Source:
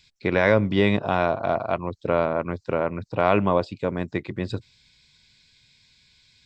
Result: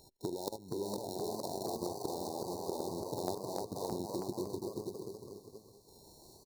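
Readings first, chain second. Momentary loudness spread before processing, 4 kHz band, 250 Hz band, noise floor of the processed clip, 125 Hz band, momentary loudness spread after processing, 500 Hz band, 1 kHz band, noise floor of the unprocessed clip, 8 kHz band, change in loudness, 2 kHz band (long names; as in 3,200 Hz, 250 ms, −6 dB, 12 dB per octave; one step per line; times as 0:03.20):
10 LU, −10.0 dB, −14.5 dB, −60 dBFS, −18.5 dB, 17 LU, −15.5 dB, −15.5 dB, −60 dBFS, can't be measured, −16.0 dB, below −40 dB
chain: samples sorted by size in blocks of 32 samples
harmonic and percussive parts rebalanced percussive +7 dB
linear-phase brick-wall band-stop 980–3,600 Hz
output level in coarse steps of 16 dB
square-wave tremolo 0.51 Hz, depth 60%, duty 25%
parametric band 370 Hz +12 dB 0.54 octaves
repeating echo 481 ms, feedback 22%, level −18.5 dB
downward compressor 16 to 1, threshold −39 dBFS, peak gain reduction 25 dB
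delay with pitch and tempo change per echo 487 ms, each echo +1 semitone, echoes 3
low-shelf EQ 68 Hz −5.5 dB
level +3.5 dB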